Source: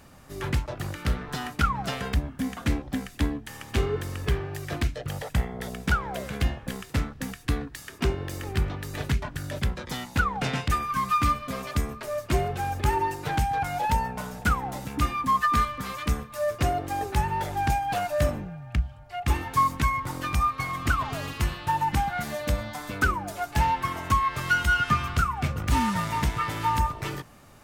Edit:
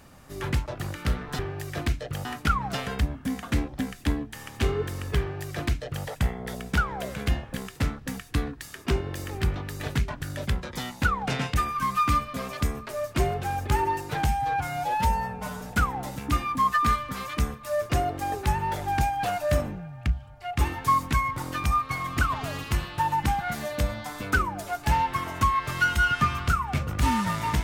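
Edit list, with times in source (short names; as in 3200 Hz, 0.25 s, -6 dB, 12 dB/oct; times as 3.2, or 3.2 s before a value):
4.34–5.2 copy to 1.39
13.4–14.3 stretch 1.5×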